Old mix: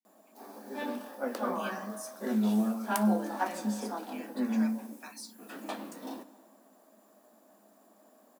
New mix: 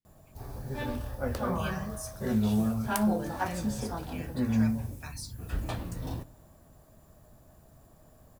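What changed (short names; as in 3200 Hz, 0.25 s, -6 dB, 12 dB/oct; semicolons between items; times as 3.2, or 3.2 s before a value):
background: send -8.0 dB; master: remove rippled Chebyshev high-pass 200 Hz, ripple 3 dB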